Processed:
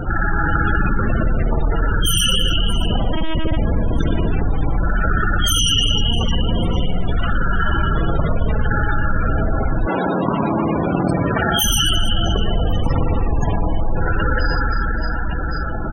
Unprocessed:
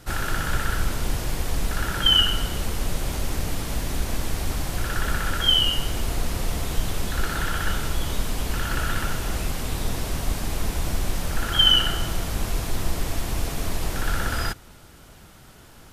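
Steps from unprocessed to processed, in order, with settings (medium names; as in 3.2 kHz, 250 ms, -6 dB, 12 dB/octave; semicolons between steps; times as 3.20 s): dynamic bell 2.9 kHz, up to +3 dB, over -31 dBFS, Q 3.6; integer overflow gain 14 dB; reverse bouncing-ball echo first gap 120 ms, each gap 1.6×, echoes 5; reverberation RT60 1.6 s, pre-delay 49 ms, DRR 0.5 dB; 3.13–3.57 s: LPC vocoder at 8 kHz pitch kept; 9.85–11.63 s: high-pass 260 Hz -> 110 Hz 12 dB/octave; loudest bins only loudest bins 32; level flattener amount 70%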